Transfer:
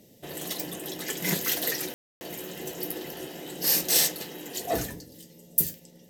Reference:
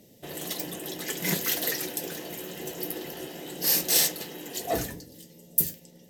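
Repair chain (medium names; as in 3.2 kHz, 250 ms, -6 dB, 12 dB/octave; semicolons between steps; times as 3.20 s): room tone fill 1.94–2.21 s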